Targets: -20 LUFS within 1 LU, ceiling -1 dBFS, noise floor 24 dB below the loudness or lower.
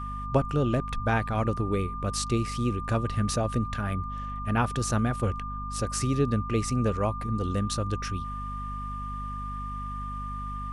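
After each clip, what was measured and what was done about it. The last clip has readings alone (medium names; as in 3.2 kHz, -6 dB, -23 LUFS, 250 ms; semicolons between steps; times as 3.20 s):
hum 50 Hz; highest harmonic 250 Hz; hum level -34 dBFS; steady tone 1.2 kHz; tone level -35 dBFS; loudness -29.5 LUFS; peak level -11.5 dBFS; loudness target -20.0 LUFS
-> hum notches 50/100/150/200/250 Hz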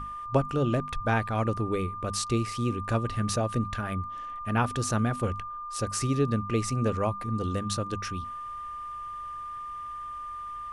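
hum not found; steady tone 1.2 kHz; tone level -35 dBFS
-> band-stop 1.2 kHz, Q 30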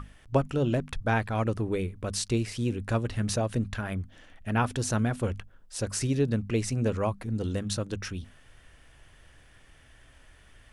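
steady tone not found; loudness -29.5 LUFS; peak level -12.0 dBFS; loudness target -20.0 LUFS
-> trim +9.5 dB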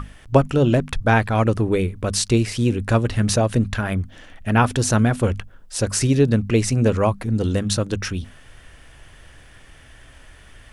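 loudness -20.0 LUFS; peak level -2.5 dBFS; noise floor -47 dBFS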